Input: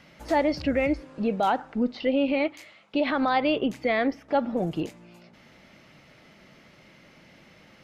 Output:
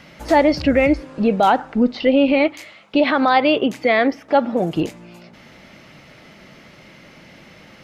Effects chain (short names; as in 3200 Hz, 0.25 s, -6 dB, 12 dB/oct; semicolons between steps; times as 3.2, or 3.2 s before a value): 3.04–4.76 HPF 220 Hz 6 dB/oct; gain +9 dB